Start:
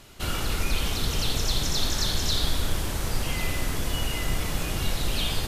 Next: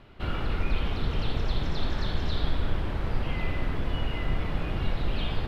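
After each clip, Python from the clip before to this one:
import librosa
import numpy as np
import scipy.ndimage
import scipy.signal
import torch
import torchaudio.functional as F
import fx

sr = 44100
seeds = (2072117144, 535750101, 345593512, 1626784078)

y = fx.air_absorb(x, sr, metres=410.0)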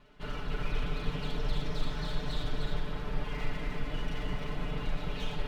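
y = fx.lower_of_two(x, sr, delay_ms=4.7)
y = y + 0.78 * np.pad(y, (int(6.8 * sr / 1000.0), 0))[:len(y)]
y = y + 10.0 ** (-4.0 / 20.0) * np.pad(y, (int(306 * sr / 1000.0), 0))[:len(y)]
y = y * librosa.db_to_amplitude(-7.5)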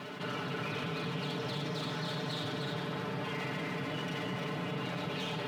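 y = scipy.signal.sosfilt(scipy.signal.butter(4, 130.0, 'highpass', fs=sr, output='sos'), x)
y = fx.env_flatten(y, sr, amount_pct=70)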